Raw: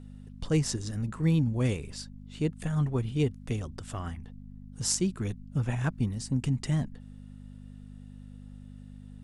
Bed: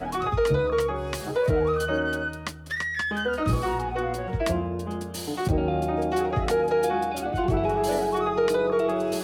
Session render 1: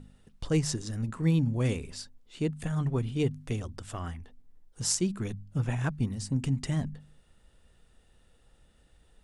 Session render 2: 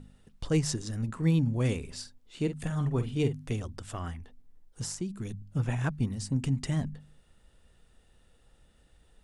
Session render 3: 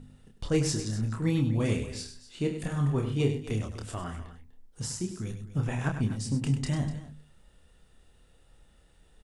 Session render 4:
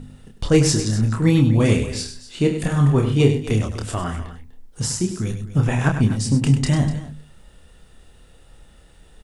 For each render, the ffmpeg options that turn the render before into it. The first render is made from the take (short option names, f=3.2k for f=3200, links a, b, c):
-af "bandreject=f=50:t=h:w=4,bandreject=f=100:t=h:w=4,bandreject=f=150:t=h:w=4,bandreject=f=200:t=h:w=4,bandreject=f=250:t=h:w=4"
-filter_complex "[0:a]asettb=1/sr,asplit=3[a][b][c];[a]atrim=end=1.874[d];[b]atrim=start=1.87:end=3.48,asetpts=PTS-STARTPTS,afade=t=in:d=0.004:c=qsin,afade=t=out:st=1.606:d=0.004:c=qsin,asplit=2[e][f];[f]adelay=48,volume=-10dB[g];[e][g]amix=inputs=2:normalize=0,atrim=end_sample=71001[h];[c]atrim=start=3.476[i];[d][h]acrossfade=d=0.004:c1=hsin:c2=qsin[j];[j][i]acrossfade=d=0.004:c1=qsin:c2=hsin,asettb=1/sr,asplit=3[k][l][m];[k]atrim=end=4.844[n];[l]atrim=start=4.84:end=5.42,asetpts=PTS-STARTPTS,afade=t=in:d=0.004:c=qsin,afade=t=out:st=0.576:d=0.004:c=qsin,acrossover=split=420|2500|5100[o][p][q][r];[o]acompressor=threshold=-33dB:ratio=3[s];[p]acompressor=threshold=-55dB:ratio=3[t];[q]acompressor=threshold=-55dB:ratio=3[u];[r]acompressor=threshold=-41dB:ratio=3[v];[s][t][u][v]amix=inputs=4:normalize=0[w];[m]atrim=start=5.416[x];[n][w]acrossfade=d=0.004:c1=hsin:c2=qsin[y];[y][x]acrossfade=d=0.004:c1=qsin:c2=hsin"
-filter_complex "[0:a]asplit=2[a][b];[b]adelay=28,volume=-5dB[c];[a][c]amix=inputs=2:normalize=0,aecho=1:1:99|247:0.335|0.178"
-af "volume=11dB"